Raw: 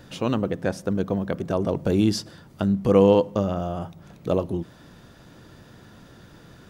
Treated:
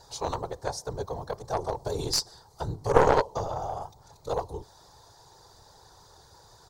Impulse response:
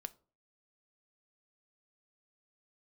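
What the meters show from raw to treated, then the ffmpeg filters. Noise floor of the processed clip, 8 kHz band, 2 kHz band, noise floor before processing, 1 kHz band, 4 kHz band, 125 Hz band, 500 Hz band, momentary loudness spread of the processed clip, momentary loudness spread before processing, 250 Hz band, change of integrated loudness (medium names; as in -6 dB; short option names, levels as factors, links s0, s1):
-56 dBFS, +5.0 dB, 0.0 dB, -50 dBFS, +3.5 dB, +2.0 dB, -8.5 dB, -5.5 dB, 17 LU, 14 LU, -16.5 dB, -5.5 dB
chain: -af "afftfilt=real='hypot(re,im)*cos(2*PI*random(0))':imag='hypot(re,im)*sin(2*PI*random(1))':win_size=512:overlap=0.75,firequalizer=gain_entry='entry(110,0);entry(220,-19);entry(420,2);entry(600,0);entry(870,14);entry(1300,-1);entry(2800,-10);entry(4100,12);entry(7100,12);entry(11000,6)':delay=0.05:min_phase=1,aeval=exprs='0.355*(cos(1*acos(clip(val(0)/0.355,-1,1)))-cos(1*PI/2))+0.158*(cos(2*acos(clip(val(0)/0.355,-1,1)))-cos(2*PI/2))+0.0562*(cos(3*acos(clip(val(0)/0.355,-1,1)))-cos(3*PI/2))+0.00891*(cos(8*acos(clip(val(0)/0.355,-1,1)))-cos(8*PI/2))':c=same,volume=1.58"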